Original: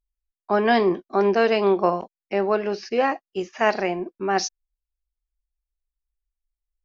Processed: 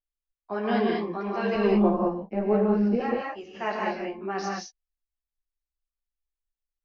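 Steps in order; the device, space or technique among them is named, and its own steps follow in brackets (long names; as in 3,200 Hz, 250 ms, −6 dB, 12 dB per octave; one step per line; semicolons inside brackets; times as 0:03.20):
0:01.55–0:03.00: spectral tilt −4.5 dB per octave
string-machine ensemble chorus (string-ensemble chorus; low-pass filter 4,700 Hz 12 dB per octave)
reverb whose tail is shaped and stops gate 230 ms rising, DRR −1.5 dB
level −7 dB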